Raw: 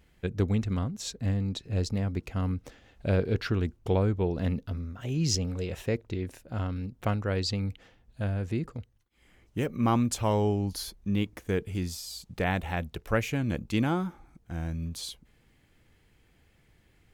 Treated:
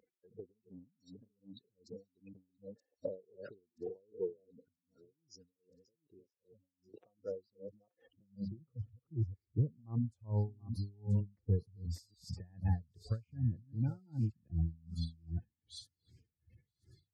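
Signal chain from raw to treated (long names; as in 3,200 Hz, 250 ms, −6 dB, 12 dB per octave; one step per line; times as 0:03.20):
delay that plays each chunk backwards 467 ms, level −6 dB
gate on every frequency bin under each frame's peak −15 dB strong
0:04.68–0:06.94: guitar amp tone stack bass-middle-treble 6-0-2
harmonic and percussive parts rebalanced percussive −11 dB
dynamic equaliser 130 Hz, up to +8 dB, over −42 dBFS, Q 1
downward compressor 10 to 1, threshold −34 dBFS, peak gain reduction 17.5 dB
high-pass filter sweep 470 Hz → 90 Hz, 0:07.95–0:08.91
delay with a high-pass on its return 978 ms, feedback 57%, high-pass 3,500 Hz, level −14.5 dB
tremolo with a sine in dB 2.6 Hz, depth 32 dB
level +2.5 dB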